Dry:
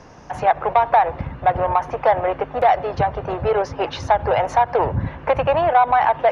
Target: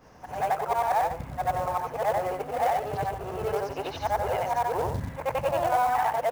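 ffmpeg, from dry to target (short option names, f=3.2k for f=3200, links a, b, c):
-af "afftfilt=real='re':imag='-im':win_size=8192:overlap=0.75,acrusher=bits=5:mode=log:mix=0:aa=0.000001,volume=-4.5dB"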